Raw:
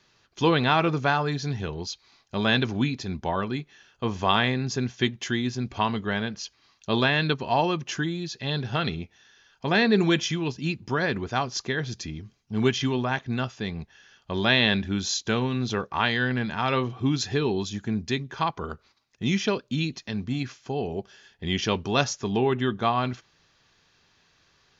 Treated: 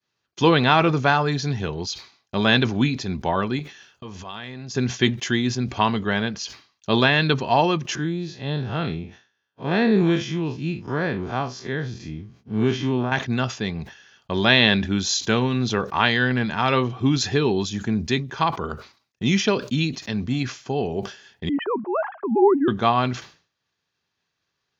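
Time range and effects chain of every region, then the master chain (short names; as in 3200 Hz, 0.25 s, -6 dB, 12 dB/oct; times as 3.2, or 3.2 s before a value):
3.59–4.75 high shelf 2500 Hz +4 dB + compressor, threshold -36 dBFS + core saturation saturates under 290 Hz
7.95–13.12 time blur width 88 ms + HPF 50 Hz + high shelf 2600 Hz -9.5 dB
21.49–22.68 sine-wave speech + LPF 1200 Hz 24 dB/oct
whole clip: HPF 75 Hz; expander -51 dBFS; sustainer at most 140 dB/s; gain +4.5 dB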